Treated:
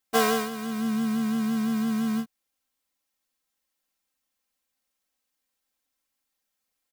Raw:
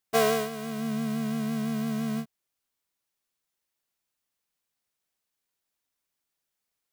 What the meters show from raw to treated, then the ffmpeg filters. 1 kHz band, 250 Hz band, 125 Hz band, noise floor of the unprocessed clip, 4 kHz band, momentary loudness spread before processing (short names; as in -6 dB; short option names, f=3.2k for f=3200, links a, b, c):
+3.0 dB, +4.0 dB, -2.5 dB, -84 dBFS, +2.5 dB, 9 LU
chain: -af "aecho=1:1:3.8:0.86"